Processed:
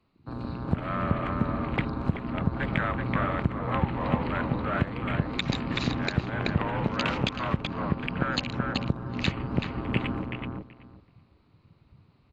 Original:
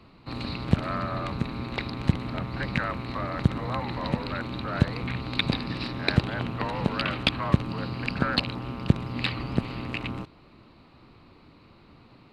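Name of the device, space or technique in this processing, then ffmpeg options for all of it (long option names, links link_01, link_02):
low-bitrate web radio: -filter_complex "[0:a]asettb=1/sr,asplit=3[link_01][link_02][link_03];[link_01]atrim=end=7.824[link_04];[link_02]atrim=start=7.82:end=8.25,asetpts=PTS-STARTPTS,afade=type=in:duration=0.004:curve=qsin,afade=type=out:start_time=0.426:duration=0.004:curve=qsin,lowpass=5200[link_05];[link_03]atrim=start=8.246[link_06];[link_04][link_05]acrossfade=duration=0.004:curve1=hsin:curve2=qsin[link_07];[link_07][link_06]acrossfade=duration=0.004:curve1=qsin:curve2=hsin,afwtdn=0.0126,asplit=2[link_08][link_09];[link_09]adelay=379,lowpass=frequency=2500:poles=1,volume=-4dB,asplit=2[link_10][link_11];[link_11]adelay=379,lowpass=frequency=2500:poles=1,volume=0.17,asplit=2[link_12][link_13];[link_13]adelay=379,lowpass=frequency=2500:poles=1,volume=0.17[link_14];[link_08][link_10][link_12][link_14]amix=inputs=4:normalize=0,dynaudnorm=framelen=300:gausssize=5:maxgain=4dB,alimiter=limit=-11dB:level=0:latency=1:release=344,volume=-1dB" -ar 24000 -c:a aac -b:a 48k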